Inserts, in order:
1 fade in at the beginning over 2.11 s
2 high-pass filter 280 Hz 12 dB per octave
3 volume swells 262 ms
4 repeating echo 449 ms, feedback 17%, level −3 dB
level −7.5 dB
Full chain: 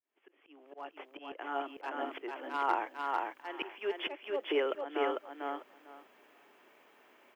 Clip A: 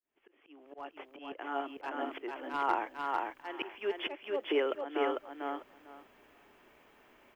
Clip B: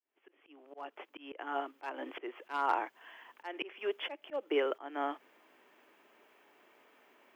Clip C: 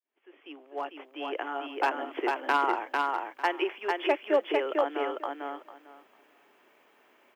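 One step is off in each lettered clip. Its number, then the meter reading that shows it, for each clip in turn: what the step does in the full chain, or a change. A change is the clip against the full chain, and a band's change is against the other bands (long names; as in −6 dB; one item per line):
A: 2, 250 Hz band +2.5 dB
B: 4, change in crest factor +2.0 dB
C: 3, change in crest factor −2.0 dB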